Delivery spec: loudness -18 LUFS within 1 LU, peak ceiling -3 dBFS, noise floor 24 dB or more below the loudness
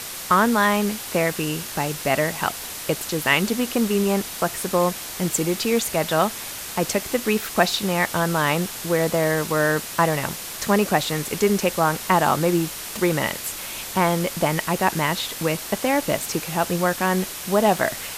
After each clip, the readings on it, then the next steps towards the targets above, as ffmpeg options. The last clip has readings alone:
noise floor -34 dBFS; noise floor target -46 dBFS; loudness -22.0 LUFS; peak -3.0 dBFS; loudness target -18.0 LUFS
-> -af "afftdn=nr=12:nf=-34"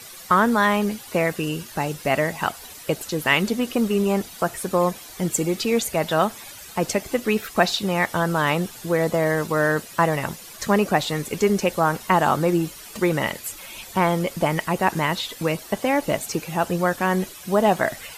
noise floor -41 dBFS; noise floor target -47 dBFS
-> -af "afftdn=nr=6:nf=-41"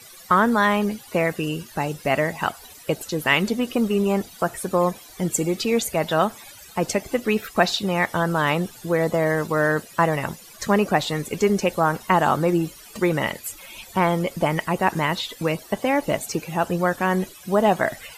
noise floor -45 dBFS; noise floor target -47 dBFS
-> -af "afftdn=nr=6:nf=-45"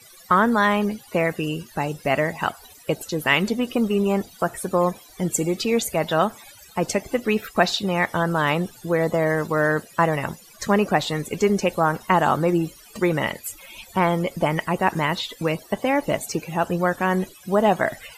noise floor -48 dBFS; loudness -22.5 LUFS; peak -3.5 dBFS; loudness target -18.0 LUFS
-> -af "volume=4.5dB,alimiter=limit=-3dB:level=0:latency=1"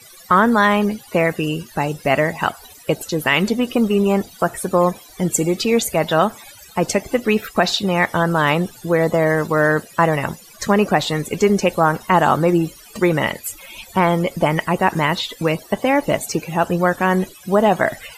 loudness -18.5 LUFS; peak -3.0 dBFS; noise floor -43 dBFS

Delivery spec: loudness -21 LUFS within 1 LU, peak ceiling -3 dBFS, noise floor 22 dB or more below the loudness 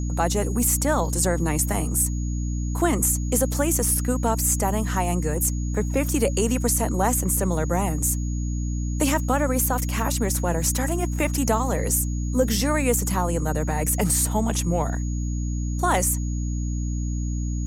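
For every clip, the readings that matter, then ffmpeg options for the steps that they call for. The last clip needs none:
hum 60 Hz; harmonics up to 300 Hz; hum level -24 dBFS; steady tone 6700 Hz; tone level -41 dBFS; loudness -23.5 LUFS; peak -8.5 dBFS; loudness target -21.0 LUFS
-> -af "bandreject=f=60:t=h:w=6,bandreject=f=120:t=h:w=6,bandreject=f=180:t=h:w=6,bandreject=f=240:t=h:w=6,bandreject=f=300:t=h:w=6"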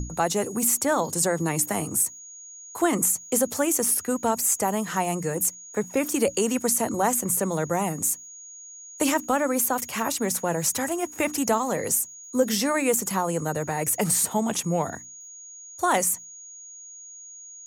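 hum none; steady tone 6700 Hz; tone level -41 dBFS
-> -af "bandreject=f=6.7k:w=30"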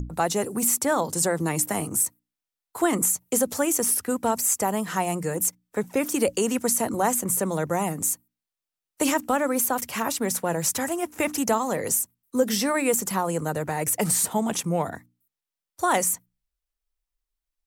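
steady tone none; loudness -24.5 LUFS; peak -8.0 dBFS; loudness target -21.0 LUFS
-> -af "volume=3.5dB"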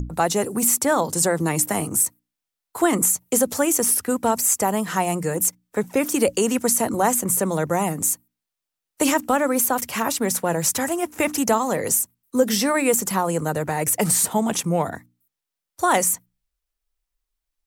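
loudness -21.0 LUFS; peak -4.5 dBFS; noise floor -85 dBFS

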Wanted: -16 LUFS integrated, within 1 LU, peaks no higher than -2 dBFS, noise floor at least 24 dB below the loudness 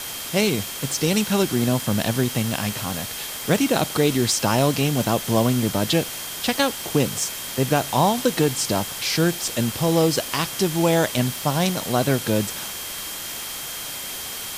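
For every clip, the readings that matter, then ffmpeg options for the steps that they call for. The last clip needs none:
steady tone 3200 Hz; tone level -39 dBFS; noise floor -32 dBFS; noise floor target -46 dBFS; loudness -22.0 LUFS; peak -6.5 dBFS; loudness target -16.0 LUFS
-> -af "bandreject=f=3.2k:w=30"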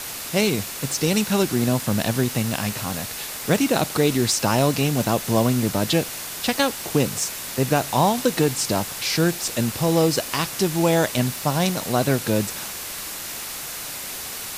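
steady tone none; noise floor -33 dBFS; noise floor target -46 dBFS
-> -af "afftdn=nr=13:nf=-33"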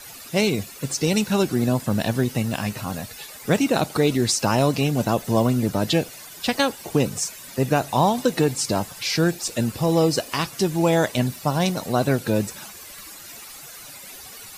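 noise floor -41 dBFS; noise floor target -47 dBFS
-> -af "afftdn=nr=6:nf=-41"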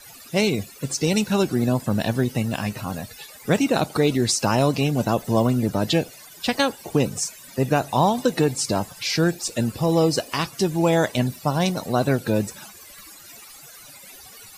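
noise floor -45 dBFS; noise floor target -47 dBFS
-> -af "afftdn=nr=6:nf=-45"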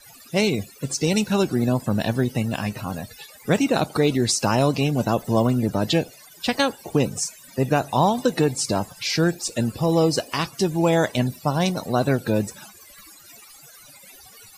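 noise floor -48 dBFS; loudness -22.5 LUFS; peak -7.5 dBFS; loudness target -16.0 LUFS
-> -af "volume=6.5dB,alimiter=limit=-2dB:level=0:latency=1"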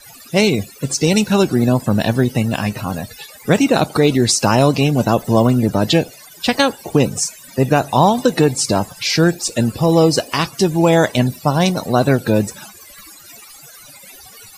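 loudness -16.0 LUFS; peak -2.0 dBFS; noise floor -41 dBFS

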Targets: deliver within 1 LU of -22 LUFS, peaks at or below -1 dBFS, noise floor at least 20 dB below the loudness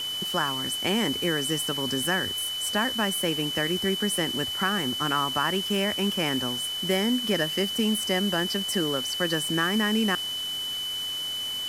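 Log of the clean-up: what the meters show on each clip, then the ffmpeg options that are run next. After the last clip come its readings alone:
steady tone 3000 Hz; tone level -29 dBFS; noise floor -32 dBFS; noise floor target -46 dBFS; loudness -25.5 LUFS; peak -10.5 dBFS; loudness target -22.0 LUFS
-> -af "bandreject=f=3k:w=30"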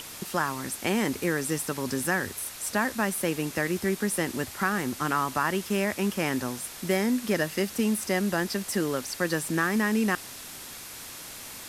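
steady tone none; noise floor -42 dBFS; noise floor target -48 dBFS
-> -af "afftdn=nr=6:nf=-42"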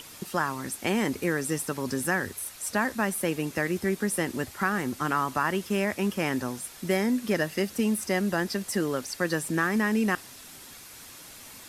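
noise floor -47 dBFS; noise floor target -48 dBFS
-> -af "afftdn=nr=6:nf=-47"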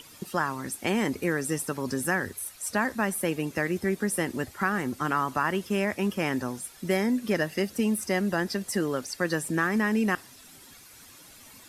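noise floor -51 dBFS; loudness -28.0 LUFS; peak -11.5 dBFS; loudness target -22.0 LUFS
-> -af "volume=6dB"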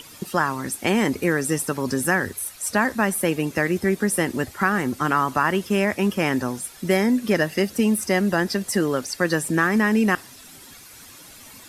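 loudness -22.0 LUFS; peak -5.5 dBFS; noise floor -45 dBFS

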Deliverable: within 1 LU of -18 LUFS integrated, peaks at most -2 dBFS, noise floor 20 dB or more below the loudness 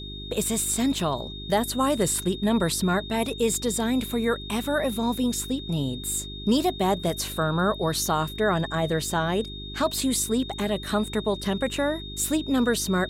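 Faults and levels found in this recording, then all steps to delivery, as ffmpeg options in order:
hum 50 Hz; harmonics up to 400 Hz; hum level -37 dBFS; steady tone 3700 Hz; tone level -38 dBFS; loudness -25.5 LUFS; peak -11.5 dBFS; loudness target -18.0 LUFS
-> -af "bandreject=f=50:t=h:w=4,bandreject=f=100:t=h:w=4,bandreject=f=150:t=h:w=4,bandreject=f=200:t=h:w=4,bandreject=f=250:t=h:w=4,bandreject=f=300:t=h:w=4,bandreject=f=350:t=h:w=4,bandreject=f=400:t=h:w=4"
-af "bandreject=f=3.7k:w=30"
-af "volume=7.5dB"

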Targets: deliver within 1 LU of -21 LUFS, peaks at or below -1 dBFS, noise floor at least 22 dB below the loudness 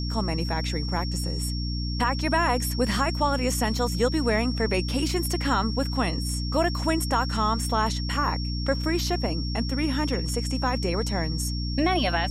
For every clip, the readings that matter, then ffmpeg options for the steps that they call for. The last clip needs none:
hum 60 Hz; harmonics up to 300 Hz; hum level -27 dBFS; steady tone 5500 Hz; tone level -35 dBFS; loudness -26.0 LUFS; peak -10.5 dBFS; loudness target -21.0 LUFS
-> -af "bandreject=f=60:t=h:w=6,bandreject=f=120:t=h:w=6,bandreject=f=180:t=h:w=6,bandreject=f=240:t=h:w=6,bandreject=f=300:t=h:w=6"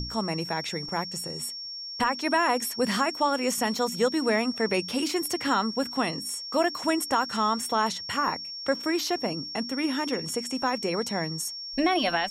hum none; steady tone 5500 Hz; tone level -35 dBFS
-> -af "bandreject=f=5.5k:w=30"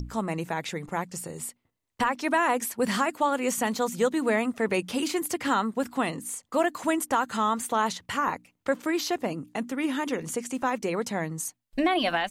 steady tone none; loudness -28.0 LUFS; peak -13.0 dBFS; loudness target -21.0 LUFS
-> -af "volume=7dB"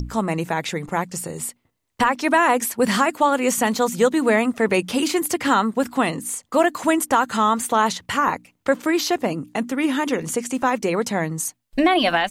loudness -21.0 LUFS; peak -6.0 dBFS; noise floor -71 dBFS

